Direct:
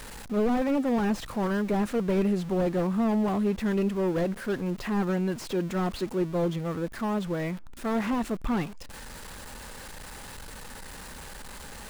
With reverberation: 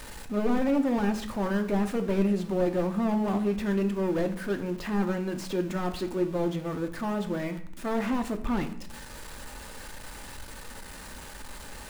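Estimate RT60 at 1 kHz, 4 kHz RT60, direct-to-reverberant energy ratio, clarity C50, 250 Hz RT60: 0.65 s, 0.50 s, 6.0 dB, 12.5 dB, 0.90 s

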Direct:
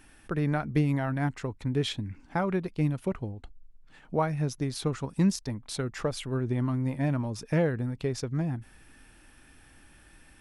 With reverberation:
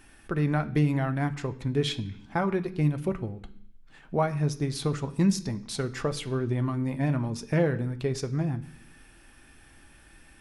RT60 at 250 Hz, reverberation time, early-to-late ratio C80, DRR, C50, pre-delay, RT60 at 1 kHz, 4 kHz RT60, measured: 0.85 s, 0.65 s, 19.0 dB, 7.5 dB, 16.0 dB, 3 ms, 0.65 s, 0.80 s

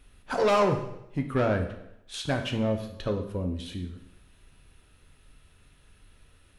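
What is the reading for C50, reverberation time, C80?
9.0 dB, 0.80 s, 11.5 dB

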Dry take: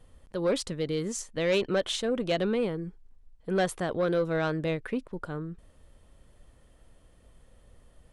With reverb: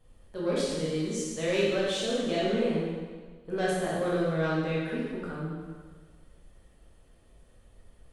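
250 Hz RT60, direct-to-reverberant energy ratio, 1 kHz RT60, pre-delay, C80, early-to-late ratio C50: 1.5 s, −7.0 dB, 1.5 s, 8 ms, 1.5 dB, −2.0 dB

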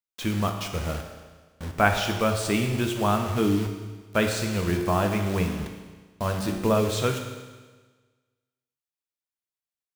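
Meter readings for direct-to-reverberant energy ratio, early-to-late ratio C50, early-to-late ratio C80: 4.0 dB, 6.0 dB, 7.5 dB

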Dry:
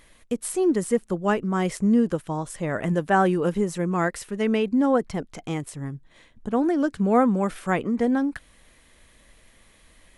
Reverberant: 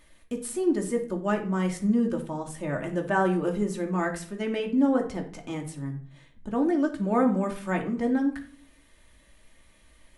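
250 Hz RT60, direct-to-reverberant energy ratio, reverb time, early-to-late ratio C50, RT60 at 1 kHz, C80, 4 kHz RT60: 0.80 s, 1.5 dB, 0.45 s, 10.5 dB, 0.45 s, 15.5 dB, 0.30 s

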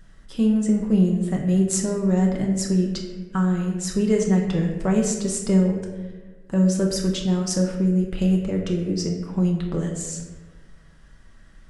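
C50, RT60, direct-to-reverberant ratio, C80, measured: 5.0 dB, 1.2 s, 0.0 dB, 7.0 dB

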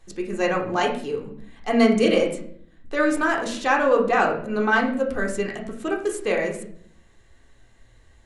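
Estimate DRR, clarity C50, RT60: 0.5 dB, 7.5 dB, 0.60 s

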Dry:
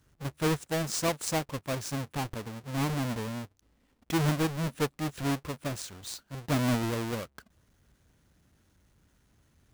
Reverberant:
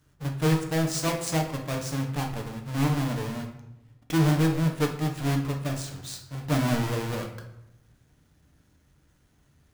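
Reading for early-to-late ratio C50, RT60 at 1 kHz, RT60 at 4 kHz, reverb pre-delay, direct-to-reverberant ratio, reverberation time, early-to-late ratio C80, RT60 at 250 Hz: 7.0 dB, 0.80 s, 0.60 s, 7 ms, 2.0 dB, 0.85 s, 10.5 dB, 1.1 s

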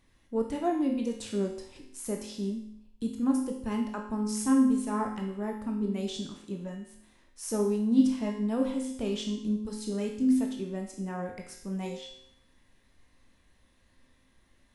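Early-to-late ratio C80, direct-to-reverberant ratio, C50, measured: 8.5 dB, 1.5 dB, 5.5 dB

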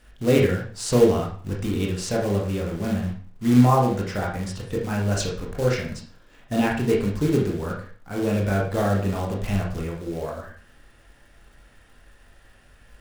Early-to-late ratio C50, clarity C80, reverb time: 5.0 dB, 9.5 dB, 0.45 s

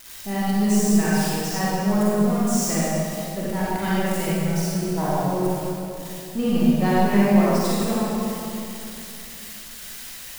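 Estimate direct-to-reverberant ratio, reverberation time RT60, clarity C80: −8.5 dB, 2.9 s, −3.0 dB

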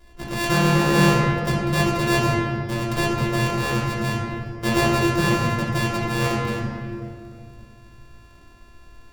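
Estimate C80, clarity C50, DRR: 1.5 dB, −0.5 dB, −5.0 dB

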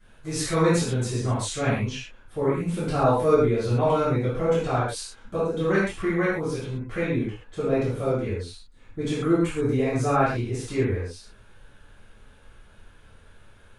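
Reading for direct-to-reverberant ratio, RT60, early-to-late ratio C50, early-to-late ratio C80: −12.5 dB, non-exponential decay, −0.5 dB, 4.0 dB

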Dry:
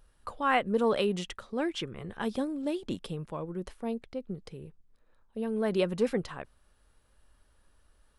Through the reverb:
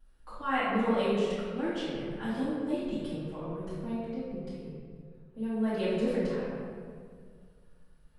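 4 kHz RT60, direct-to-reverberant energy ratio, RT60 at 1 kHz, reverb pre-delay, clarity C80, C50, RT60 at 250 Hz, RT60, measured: 1.1 s, −14.0 dB, 1.7 s, 3 ms, 0.0 dB, −3.5 dB, 2.4 s, 1.9 s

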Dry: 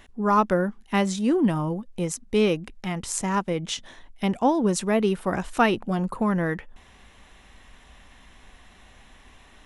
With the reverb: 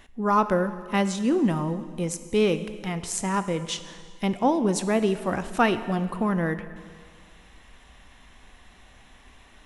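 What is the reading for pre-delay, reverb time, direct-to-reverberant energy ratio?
6 ms, 1.9 s, 11.0 dB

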